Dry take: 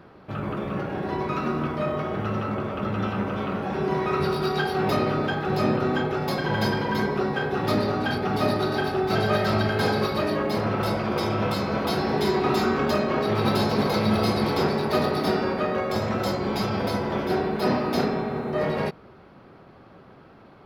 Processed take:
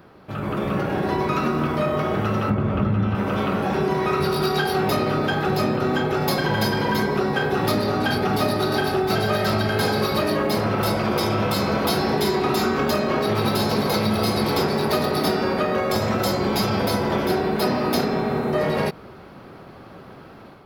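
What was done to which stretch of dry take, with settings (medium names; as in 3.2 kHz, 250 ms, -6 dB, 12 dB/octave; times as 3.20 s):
2.50–3.15 s: tone controls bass +11 dB, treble -10 dB
whole clip: compression, threshold -25 dBFS; treble shelf 7 kHz +11.5 dB; level rider gain up to 7 dB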